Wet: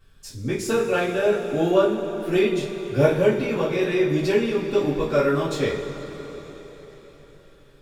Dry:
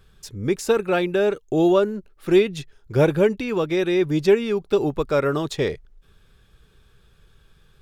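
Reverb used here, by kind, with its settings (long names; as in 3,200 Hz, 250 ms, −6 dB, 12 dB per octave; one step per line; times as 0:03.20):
coupled-rooms reverb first 0.33 s, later 4.7 s, from −18 dB, DRR −9.5 dB
level −9.5 dB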